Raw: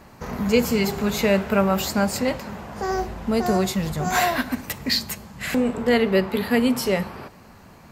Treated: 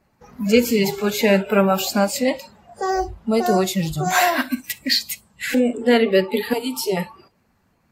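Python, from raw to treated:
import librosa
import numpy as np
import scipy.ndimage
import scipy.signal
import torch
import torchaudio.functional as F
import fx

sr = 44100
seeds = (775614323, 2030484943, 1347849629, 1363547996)

y = fx.spec_quant(x, sr, step_db=15)
y = fx.noise_reduce_blind(y, sr, reduce_db=20)
y = fx.fixed_phaser(y, sr, hz=350.0, stages=8, at=(6.53, 6.97))
y = F.gain(torch.from_numpy(y), 4.0).numpy()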